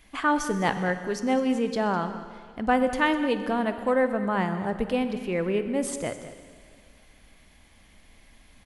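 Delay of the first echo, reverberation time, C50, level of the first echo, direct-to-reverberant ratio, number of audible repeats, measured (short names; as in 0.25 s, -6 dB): 0.127 s, 2.1 s, 9.5 dB, -19.0 dB, 9.0 dB, 2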